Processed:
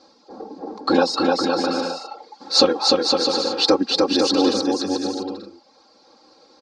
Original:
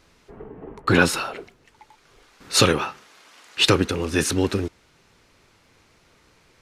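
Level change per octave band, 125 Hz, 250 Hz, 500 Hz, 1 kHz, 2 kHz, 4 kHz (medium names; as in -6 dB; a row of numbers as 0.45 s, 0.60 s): -12.5 dB, +4.5 dB, +5.5 dB, +5.0 dB, -6.5 dB, +5.5 dB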